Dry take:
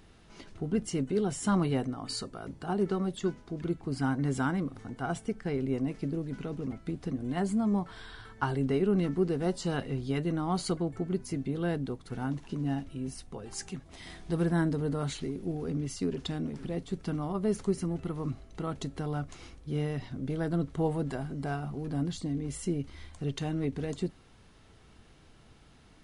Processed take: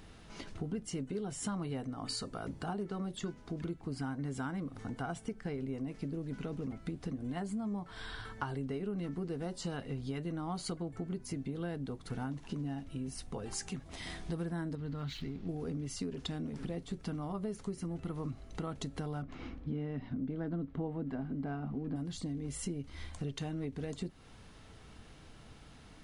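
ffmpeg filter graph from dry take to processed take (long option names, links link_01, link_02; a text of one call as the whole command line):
ffmpeg -i in.wav -filter_complex "[0:a]asettb=1/sr,asplit=3[link_01][link_02][link_03];[link_01]atrim=end=14.754[link_04];[link_02]atrim=start=14.75:end=15.49,asetpts=PTS-STARTPTS,afade=type=in:duration=0.004:curve=qsin,afade=type=out:start_time=0.736:duration=0.004:curve=qsin,lowpass=frequency=4800:width=0.5412,lowpass=frequency=4800:width=1.3066,equalizer=frequency=580:width_type=o:width=1.9:gain=-11.5,aeval=exprs='sgn(val(0))*max(abs(val(0))-0.001,0)':channel_layout=same[link_05];[link_03]atrim=start=15.486[link_06];[link_04][link_05]acrossfade=duration=0.004:curve1=hsin:curve2=qsin[link_07];[link_07][link_06]acrossfade=duration=0.004:curve1=qsin:curve2=hsin,asettb=1/sr,asplit=3[link_08][link_09][link_10];[link_08]atrim=end=19.224[link_11];[link_09]atrim=start=19.22:end=21.96,asetpts=PTS-STARTPTS,afade=type=in:duration=0.004:curve=qsin,afade=type=out:start_time=2.736:duration=0.004:curve=qsin,lowpass=2600,equalizer=frequency=250:width_type=o:width=0.67:gain=10.5[link_12];[link_10]atrim=start=21.956[link_13];[link_11][link_12]acrossfade=duration=0.004:curve1=hsin:curve2=qsin[link_14];[link_14][link_13]acrossfade=duration=0.004:curve1=qsin:curve2=hsin,bandreject=frequency=370:width=12,acompressor=threshold=-39dB:ratio=5,volume=3dB" out.wav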